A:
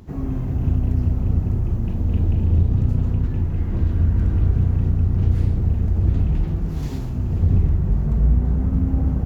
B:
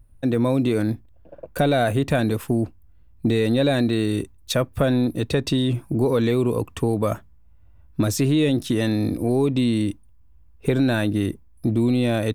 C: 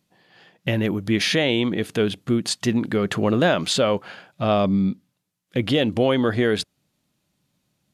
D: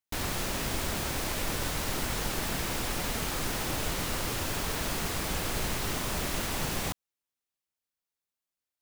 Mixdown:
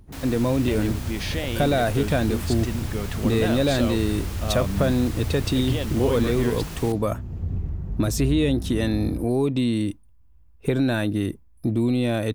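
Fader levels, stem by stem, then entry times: -11.0, -2.0, -10.0, -6.0 dB; 0.00, 0.00, 0.00, 0.00 s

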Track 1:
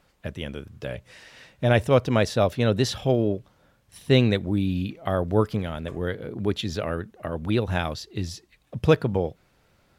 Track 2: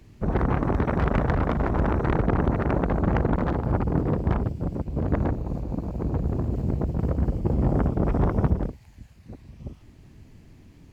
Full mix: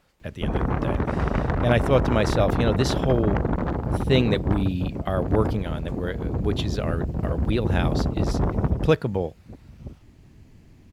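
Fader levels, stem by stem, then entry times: -1.0, -1.0 dB; 0.00, 0.20 s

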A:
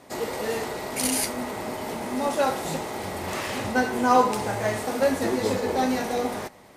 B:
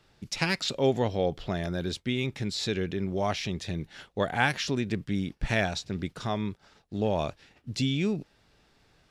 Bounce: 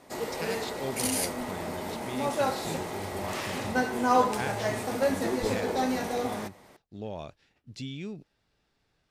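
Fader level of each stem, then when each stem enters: -4.0, -10.5 dB; 0.00, 0.00 s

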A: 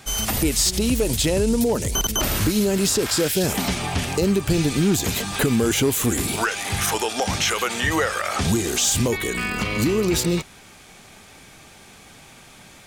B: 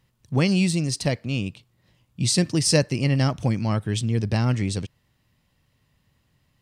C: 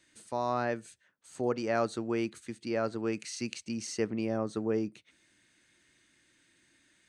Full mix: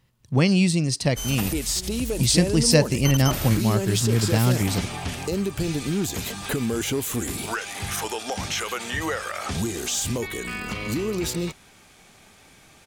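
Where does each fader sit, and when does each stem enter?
-6.0 dB, +1.5 dB, off; 1.10 s, 0.00 s, off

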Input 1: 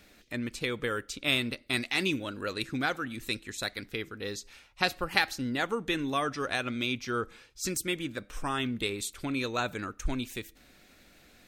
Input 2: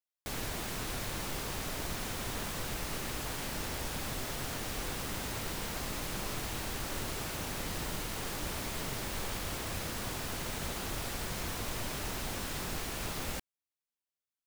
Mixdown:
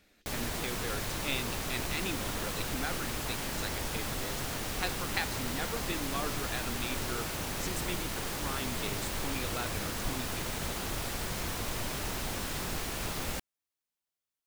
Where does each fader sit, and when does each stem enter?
-8.0, +2.0 dB; 0.00, 0.00 s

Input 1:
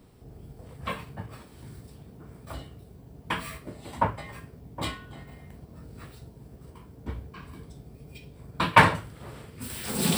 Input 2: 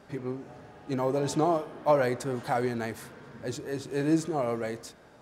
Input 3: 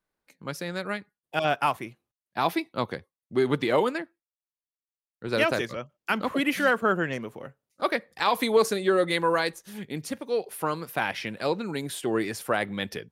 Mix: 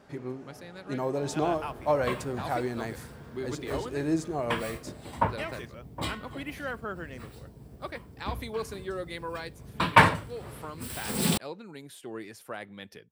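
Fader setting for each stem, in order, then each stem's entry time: -1.0, -2.5, -13.0 dB; 1.20, 0.00, 0.00 s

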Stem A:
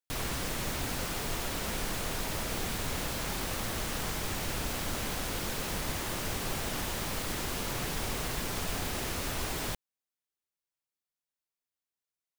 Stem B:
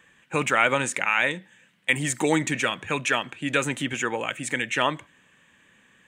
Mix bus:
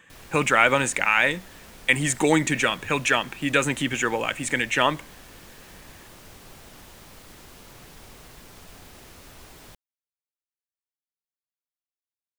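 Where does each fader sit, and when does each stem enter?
-12.5, +2.5 dB; 0.00, 0.00 s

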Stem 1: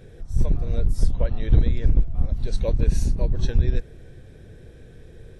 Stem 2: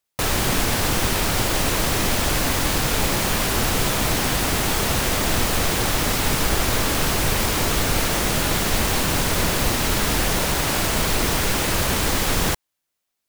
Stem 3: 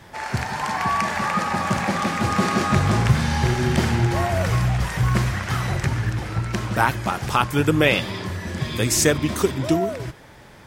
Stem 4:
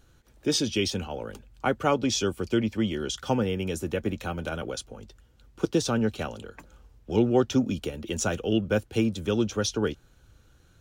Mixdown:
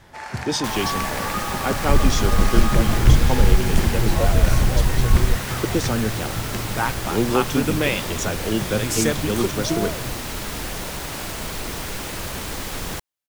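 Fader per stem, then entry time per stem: +2.5, -8.5, -4.5, +1.0 dB; 1.55, 0.45, 0.00, 0.00 s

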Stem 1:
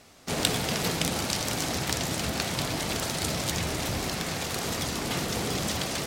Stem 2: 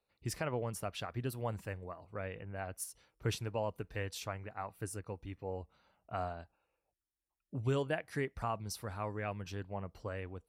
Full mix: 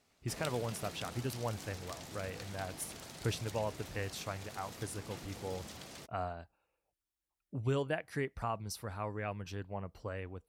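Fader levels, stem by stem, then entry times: -19.0, 0.0 dB; 0.00, 0.00 s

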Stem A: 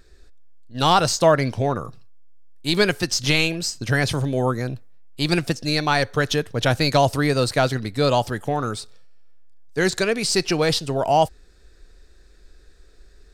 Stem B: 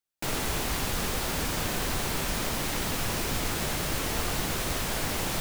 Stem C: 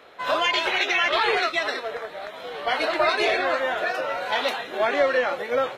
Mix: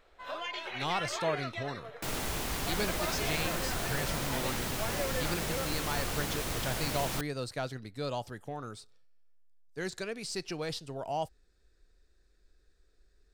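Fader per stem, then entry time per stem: -16.5, -5.0, -16.0 dB; 0.00, 1.80, 0.00 s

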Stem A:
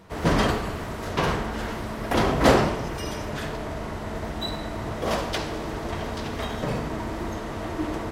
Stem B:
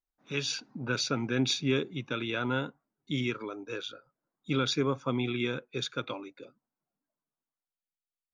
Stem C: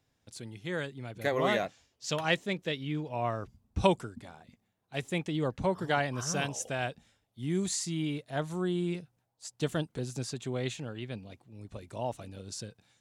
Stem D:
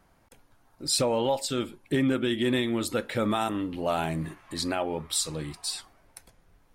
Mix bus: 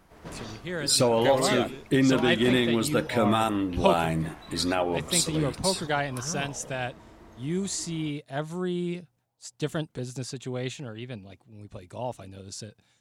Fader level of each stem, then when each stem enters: -20.0, -15.5, +1.5, +3.0 dB; 0.00, 0.00, 0.00, 0.00 s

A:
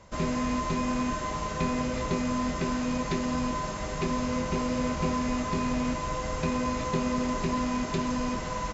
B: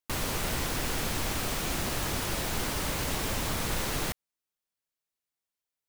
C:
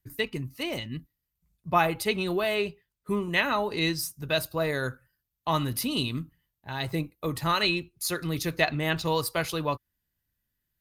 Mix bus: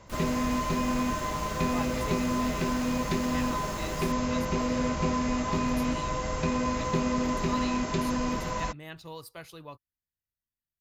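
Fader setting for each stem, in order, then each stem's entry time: +0.5, -13.0, -16.0 dB; 0.00, 0.00, 0.00 s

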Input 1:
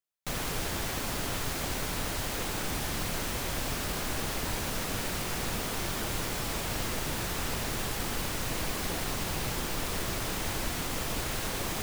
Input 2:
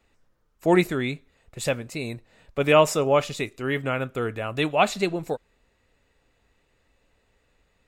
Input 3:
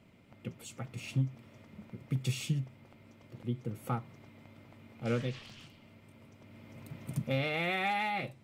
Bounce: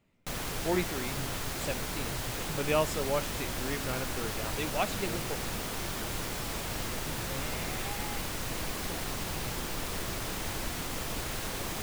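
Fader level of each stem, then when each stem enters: -2.5, -11.0, -11.0 dB; 0.00, 0.00, 0.00 s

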